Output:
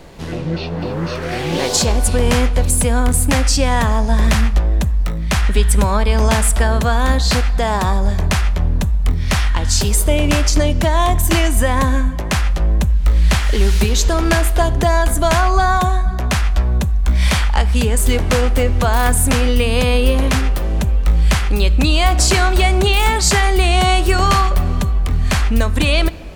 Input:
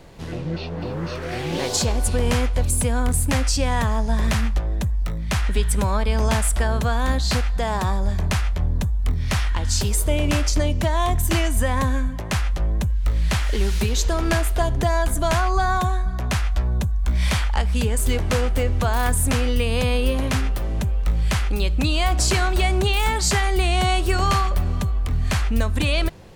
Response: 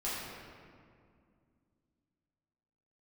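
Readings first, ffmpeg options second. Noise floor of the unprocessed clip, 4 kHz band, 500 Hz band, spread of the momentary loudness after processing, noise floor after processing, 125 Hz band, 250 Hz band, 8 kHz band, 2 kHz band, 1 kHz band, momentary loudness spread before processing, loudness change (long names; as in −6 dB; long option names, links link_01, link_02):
−28 dBFS, +6.5 dB, +6.5 dB, 5 LU, −22 dBFS, +5.5 dB, +6.0 dB, +6.5 dB, +6.5 dB, +6.5 dB, 5 LU, +6.0 dB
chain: -filter_complex "[0:a]equalizer=frequency=110:width=3.6:gain=-7.5,asplit=2[link_01][link_02];[1:a]atrim=start_sample=2205[link_03];[link_02][link_03]afir=irnorm=-1:irlink=0,volume=-22dB[link_04];[link_01][link_04]amix=inputs=2:normalize=0,volume=6dB"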